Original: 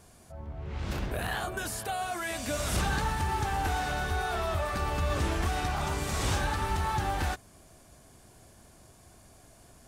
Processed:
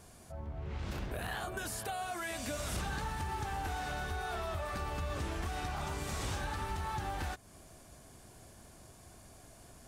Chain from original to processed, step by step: compression 2.5:1, threshold -38 dBFS, peak gain reduction 9 dB

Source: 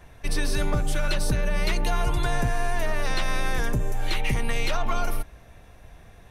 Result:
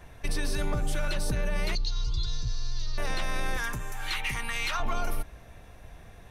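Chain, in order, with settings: 3.57–4.80 s: resonant low shelf 790 Hz -10.5 dB, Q 1.5; peak limiter -20 dBFS, peak gain reduction 7 dB; 1.75–2.98 s: FFT filter 120 Hz 0 dB, 180 Hz -16 dB, 460 Hz -16 dB, 670 Hz -28 dB, 1.2 kHz -12 dB, 1.7 kHz -20 dB, 2.5 kHz -15 dB, 4.4 kHz +14 dB, 6.3 kHz +1 dB, 9.8 kHz -28 dB

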